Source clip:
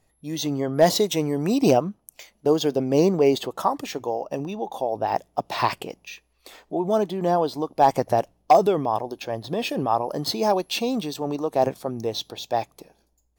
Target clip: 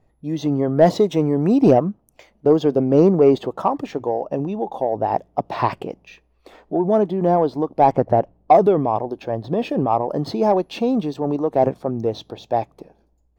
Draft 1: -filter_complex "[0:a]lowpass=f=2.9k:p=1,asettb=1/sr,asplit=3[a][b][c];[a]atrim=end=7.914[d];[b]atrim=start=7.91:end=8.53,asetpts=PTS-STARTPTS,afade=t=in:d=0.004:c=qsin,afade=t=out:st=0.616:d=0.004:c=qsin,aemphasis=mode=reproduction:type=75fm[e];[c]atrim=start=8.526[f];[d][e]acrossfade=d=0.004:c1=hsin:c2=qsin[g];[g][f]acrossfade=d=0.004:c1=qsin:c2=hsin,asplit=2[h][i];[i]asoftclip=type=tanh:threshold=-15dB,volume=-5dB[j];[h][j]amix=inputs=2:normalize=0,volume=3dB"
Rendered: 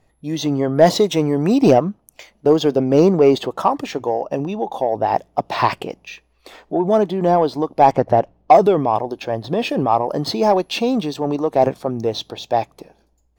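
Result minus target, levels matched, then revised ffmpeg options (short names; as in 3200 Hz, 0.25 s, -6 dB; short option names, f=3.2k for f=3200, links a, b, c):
4000 Hz band +8.5 dB
-filter_complex "[0:a]lowpass=f=730:p=1,asettb=1/sr,asplit=3[a][b][c];[a]atrim=end=7.914[d];[b]atrim=start=7.91:end=8.53,asetpts=PTS-STARTPTS,afade=t=in:d=0.004:c=qsin,afade=t=out:st=0.616:d=0.004:c=qsin,aemphasis=mode=reproduction:type=75fm[e];[c]atrim=start=8.526[f];[d][e]acrossfade=d=0.004:c1=hsin:c2=qsin[g];[g][f]acrossfade=d=0.004:c1=qsin:c2=hsin,asplit=2[h][i];[i]asoftclip=type=tanh:threshold=-15dB,volume=-5dB[j];[h][j]amix=inputs=2:normalize=0,volume=3dB"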